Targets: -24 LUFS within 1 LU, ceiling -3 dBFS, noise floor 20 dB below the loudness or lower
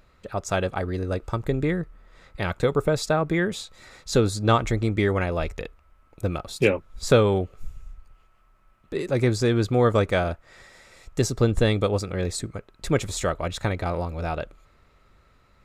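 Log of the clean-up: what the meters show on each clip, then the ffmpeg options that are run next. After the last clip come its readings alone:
loudness -25.0 LUFS; peak level -5.0 dBFS; loudness target -24.0 LUFS
-> -af "volume=1.12"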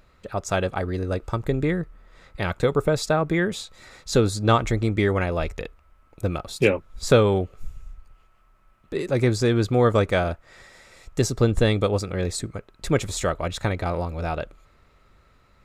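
loudness -24.0 LUFS; peak level -4.0 dBFS; noise floor -59 dBFS

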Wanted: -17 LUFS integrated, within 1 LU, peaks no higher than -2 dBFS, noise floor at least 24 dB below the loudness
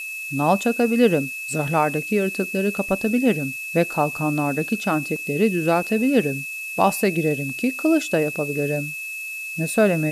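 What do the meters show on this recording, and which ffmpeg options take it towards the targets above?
steady tone 2.6 kHz; tone level -29 dBFS; noise floor -32 dBFS; noise floor target -46 dBFS; loudness -22.0 LUFS; peak level -4.5 dBFS; loudness target -17.0 LUFS
-> -af "bandreject=f=2600:w=30"
-af "afftdn=nr=14:nf=-32"
-af "volume=1.78,alimiter=limit=0.794:level=0:latency=1"

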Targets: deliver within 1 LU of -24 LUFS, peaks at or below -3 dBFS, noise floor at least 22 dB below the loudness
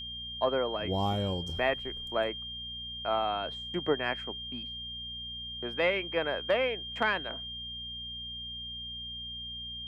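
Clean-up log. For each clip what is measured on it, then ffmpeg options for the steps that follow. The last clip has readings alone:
hum 60 Hz; highest harmonic 240 Hz; hum level -48 dBFS; steady tone 3.2 kHz; tone level -38 dBFS; loudness -32.5 LUFS; peak level -15.0 dBFS; loudness target -24.0 LUFS
-> -af "bandreject=f=60:t=h:w=4,bandreject=f=120:t=h:w=4,bandreject=f=180:t=h:w=4,bandreject=f=240:t=h:w=4"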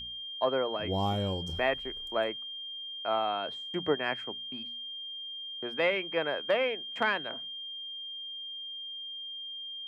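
hum not found; steady tone 3.2 kHz; tone level -38 dBFS
-> -af "bandreject=f=3200:w=30"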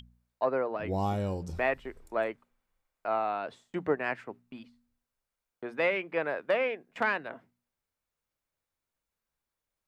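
steady tone not found; loudness -32.0 LUFS; peak level -15.5 dBFS; loudness target -24.0 LUFS
-> -af "volume=2.51"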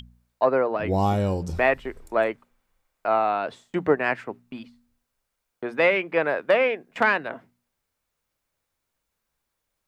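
loudness -24.0 LUFS; peak level -7.5 dBFS; noise floor -80 dBFS

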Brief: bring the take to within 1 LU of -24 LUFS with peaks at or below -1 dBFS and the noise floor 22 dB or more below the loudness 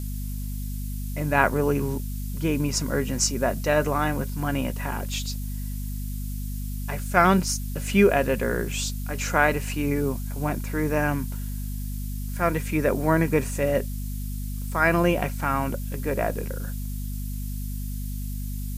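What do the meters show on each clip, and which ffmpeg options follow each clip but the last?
hum 50 Hz; highest harmonic 250 Hz; hum level -28 dBFS; noise floor -31 dBFS; noise floor target -48 dBFS; loudness -26.0 LUFS; peak level -3.0 dBFS; loudness target -24.0 LUFS
-> -af "bandreject=f=50:t=h:w=4,bandreject=f=100:t=h:w=4,bandreject=f=150:t=h:w=4,bandreject=f=200:t=h:w=4,bandreject=f=250:t=h:w=4"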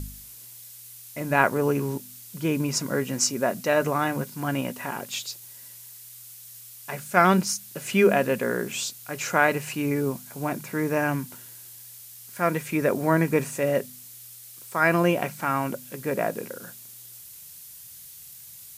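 hum not found; noise floor -45 dBFS; noise floor target -48 dBFS
-> -af "afftdn=nr=6:nf=-45"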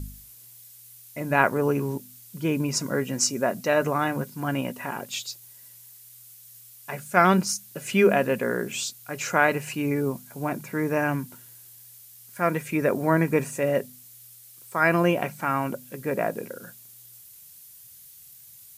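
noise floor -49 dBFS; loudness -25.5 LUFS; peak level -3.5 dBFS; loudness target -24.0 LUFS
-> -af "volume=1.19"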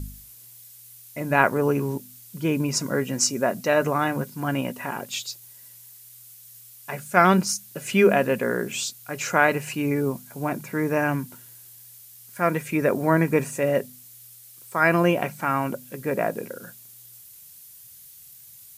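loudness -24.0 LUFS; peak level -2.0 dBFS; noise floor -48 dBFS

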